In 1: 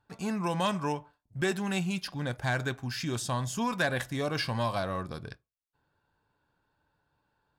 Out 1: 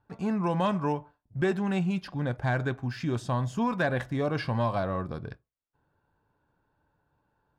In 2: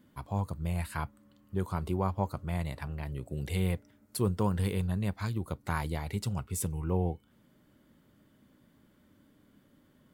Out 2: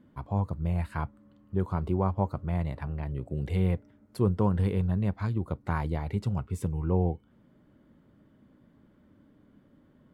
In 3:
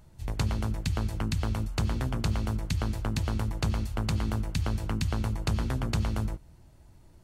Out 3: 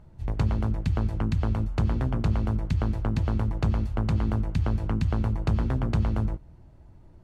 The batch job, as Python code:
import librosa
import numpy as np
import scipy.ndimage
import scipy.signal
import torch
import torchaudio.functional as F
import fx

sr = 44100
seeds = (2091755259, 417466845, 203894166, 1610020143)

y = fx.lowpass(x, sr, hz=1100.0, slope=6)
y = y * 10.0 ** (4.0 / 20.0)